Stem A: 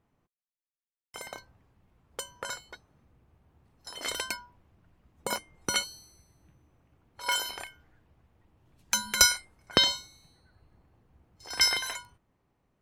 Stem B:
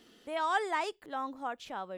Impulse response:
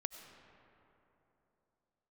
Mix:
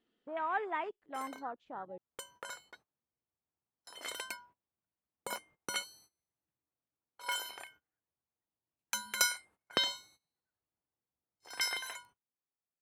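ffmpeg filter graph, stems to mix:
-filter_complex "[0:a]highpass=f=400:p=1,agate=range=-20dB:threshold=-53dB:ratio=16:detection=peak,volume=-6.5dB[a];[1:a]lowpass=4.9k,afwtdn=0.01,volume=-4dB[b];[a][b]amix=inputs=2:normalize=0,equalizer=f=5.2k:w=1.6:g=-6"

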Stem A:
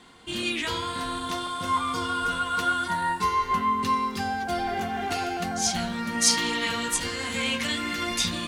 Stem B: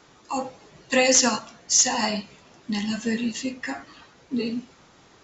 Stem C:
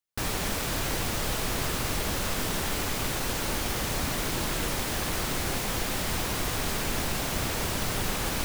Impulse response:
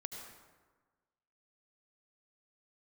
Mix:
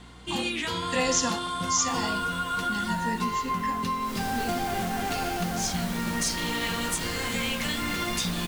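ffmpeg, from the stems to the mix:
-filter_complex "[0:a]equalizer=f=180:w=6.2:g=11.5,acompressor=threshold=-27dB:ratio=6,volume=1dB[a];[1:a]aeval=exprs='val(0)+0.00794*(sin(2*PI*60*n/s)+sin(2*PI*2*60*n/s)/2+sin(2*PI*3*60*n/s)/3+sin(2*PI*4*60*n/s)/4+sin(2*PI*5*60*n/s)/5)':c=same,volume=-7.5dB[b];[2:a]adelay=1700,volume=-7dB,afade=t=in:st=4:d=0.22:silence=0.316228[c];[a][b][c]amix=inputs=3:normalize=0"

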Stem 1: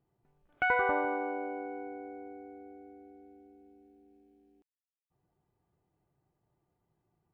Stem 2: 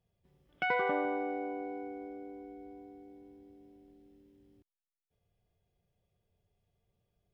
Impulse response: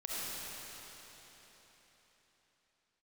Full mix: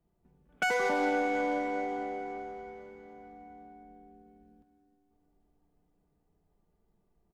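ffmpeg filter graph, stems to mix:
-filter_complex "[0:a]highpass=f=130:w=0.5412,highpass=f=130:w=1.3066,flanger=delay=3:depth=1.2:regen=-68:speed=0.41:shape=triangular,volume=0.5dB,asplit=2[a][b];[b]volume=-5.5dB[c];[1:a]aecho=1:1:4.5:0.91,adynamicsmooth=sensitivity=5:basefreq=630,adelay=2.5,volume=1dB,asplit=2[d][e];[e]volume=-9dB[f];[2:a]atrim=start_sample=2205[g];[c][f]amix=inputs=2:normalize=0[h];[h][g]afir=irnorm=-1:irlink=0[i];[a][d][i]amix=inputs=3:normalize=0,alimiter=limit=-19.5dB:level=0:latency=1:release=118"

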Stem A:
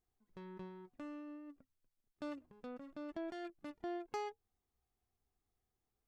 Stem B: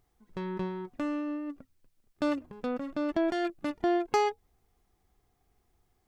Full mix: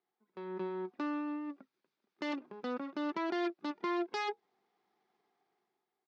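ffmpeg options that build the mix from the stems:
-filter_complex "[0:a]aeval=exprs='max(val(0),0)':c=same,volume=-3dB[a];[1:a]bandpass=f=1.9k:t=q:w=0.5:csg=0,adelay=0.8,volume=-10.5dB[b];[a][b]amix=inputs=2:normalize=0,dynaudnorm=f=150:g=9:m=10dB,aeval=exprs='0.0299*(abs(mod(val(0)/0.0299+3,4)-2)-1)':c=same,highpass=f=170:w=0.5412,highpass=f=170:w=1.3066,equalizer=f=200:t=q:w=4:g=5,equalizer=f=380:t=q:w=4:g=9,equalizer=f=850:t=q:w=4:g=5,equalizer=f=2.8k:t=q:w=4:g=-3,lowpass=f=5.1k:w=0.5412,lowpass=f=5.1k:w=1.3066"

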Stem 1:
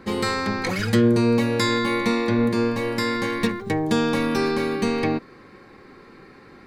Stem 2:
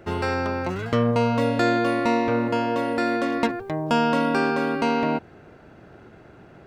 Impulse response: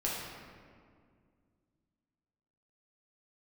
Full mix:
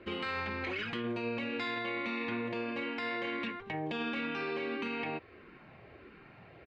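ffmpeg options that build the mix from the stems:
-filter_complex "[0:a]lowpass=f=2.8k:t=q:w=4.3,flanger=delay=0.2:depth=5.6:regen=-68:speed=0.61:shape=triangular,highpass=f=370:p=1,volume=-8.5dB[a];[1:a]lowpass=2.1k,acompressor=threshold=-30dB:ratio=4,asplit=2[b][c];[c]afreqshift=-1.5[d];[b][d]amix=inputs=2:normalize=1,adelay=2.3,volume=-5.5dB[e];[a][e]amix=inputs=2:normalize=0,alimiter=level_in=3.5dB:limit=-24dB:level=0:latency=1:release=23,volume=-3.5dB"

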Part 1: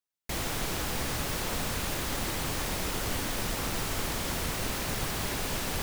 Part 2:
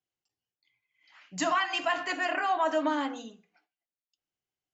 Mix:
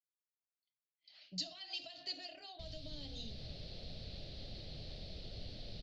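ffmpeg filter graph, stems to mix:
-filter_complex "[0:a]lowpass=3k,adelay=2300,volume=-12dB[a];[1:a]agate=range=-33dB:threshold=-60dB:ratio=3:detection=peak,acompressor=threshold=-33dB:ratio=6,volume=-0.5dB[b];[a][b]amix=inputs=2:normalize=0,firequalizer=gain_entry='entry(140,0);entry(290,-7);entry(630,0);entry(960,-24);entry(4300,12);entry(6900,-14)':delay=0.05:min_phase=1,acrossover=split=180|3000[c][d][e];[d]acompressor=threshold=-54dB:ratio=6[f];[c][f][e]amix=inputs=3:normalize=0"

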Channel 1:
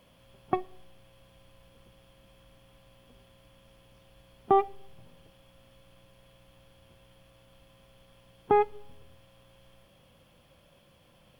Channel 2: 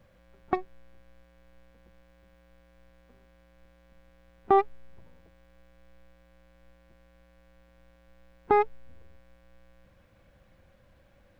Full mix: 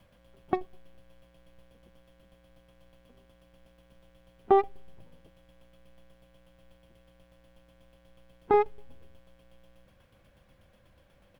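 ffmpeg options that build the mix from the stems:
-filter_complex "[0:a]aeval=exprs='val(0)*pow(10,-20*if(lt(mod(8.2*n/s,1),2*abs(8.2)/1000),1-mod(8.2*n/s,1)/(2*abs(8.2)/1000),(mod(8.2*n/s,1)-2*abs(8.2)/1000)/(1-2*abs(8.2)/1000))/20)':c=same,volume=-1.5dB[a];[1:a]adelay=0.6,volume=-2dB[b];[a][b]amix=inputs=2:normalize=0"

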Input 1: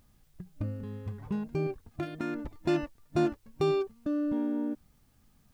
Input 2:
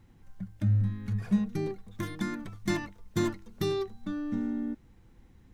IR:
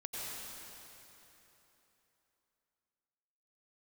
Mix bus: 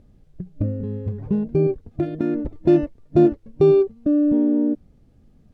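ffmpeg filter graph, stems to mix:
-filter_complex "[0:a]lowshelf=f=720:t=q:w=1.5:g=10,volume=0.5dB[a];[1:a]volume=-18dB[b];[a][b]amix=inputs=2:normalize=0,aemphasis=mode=reproduction:type=50fm"

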